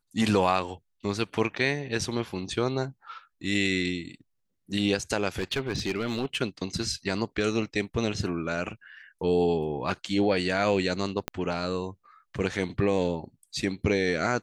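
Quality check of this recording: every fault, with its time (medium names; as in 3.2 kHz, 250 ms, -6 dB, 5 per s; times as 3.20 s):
5.38–6.37 s: clipped -23 dBFS
11.28 s: pop -13 dBFS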